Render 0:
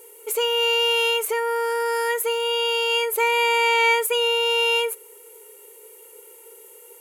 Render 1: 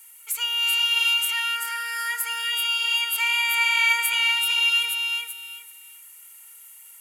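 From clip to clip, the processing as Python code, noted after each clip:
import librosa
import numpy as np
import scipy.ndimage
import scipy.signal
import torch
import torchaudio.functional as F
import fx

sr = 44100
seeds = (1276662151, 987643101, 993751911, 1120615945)

y = scipy.signal.sosfilt(scipy.signal.butter(4, 1300.0, 'highpass', fs=sr, output='sos'), x)
y = fx.echo_feedback(y, sr, ms=384, feedback_pct=23, wet_db=-4.5)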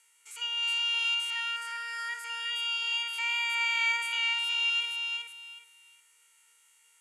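y = fx.spec_steps(x, sr, hold_ms=50)
y = scipy.signal.sosfilt(scipy.signal.butter(4, 8100.0, 'lowpass', fs=sr, output='sos'), y)
y = y * 10.0 ** (-7.0 / 20.0)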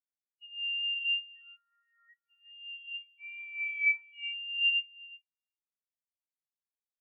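y = fx.spectral_expand(x, sr, expansion=4.0)
y = y * 10.0 ** (-2.0 / 20.0)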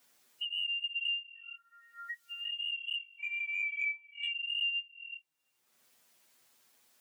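y = fx.env_flanger(x, sr, rest_ms=8.2, full_db=-28.0)
y = fx.band_squash(y, sr, depth_pct=100)
y = y * 10.0 ** (2.0 / 20.0)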